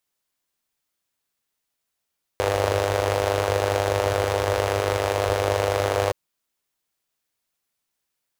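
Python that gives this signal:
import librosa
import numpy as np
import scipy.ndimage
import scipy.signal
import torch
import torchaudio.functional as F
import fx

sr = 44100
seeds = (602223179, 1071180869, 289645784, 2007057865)

y = fx.engine_four(sr, seeds[0], length_s=3.72, rpm=3000, resonances_hz=(87.0, 500.0))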